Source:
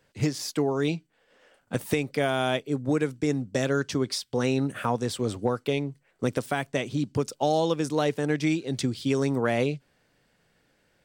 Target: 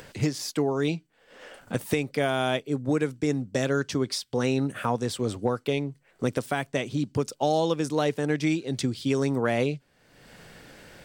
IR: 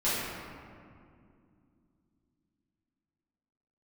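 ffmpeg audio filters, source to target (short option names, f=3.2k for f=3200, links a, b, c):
-af "acompressor=mode=upward:threshold=-32dB:ratio=2.5"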